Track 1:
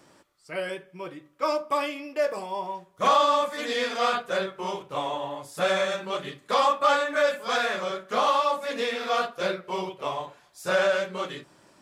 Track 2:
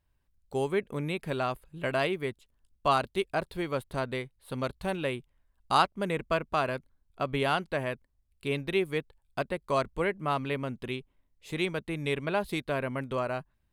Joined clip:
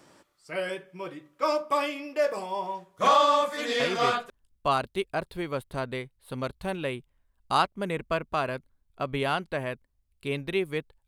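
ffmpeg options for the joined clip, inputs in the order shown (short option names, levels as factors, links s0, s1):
-filter_complex "[0:a]apad=whole_dur=11.07,atrim=end=11.07,atrim=end=4.3,asetpts=PTS-STARTPTS[s0];[1:a]atrim=start=2:end=9.27,asetpts=PTS-STARTPTS[s1];[s0][s1]acrossfade=d=0.5:c1=log:c2=log"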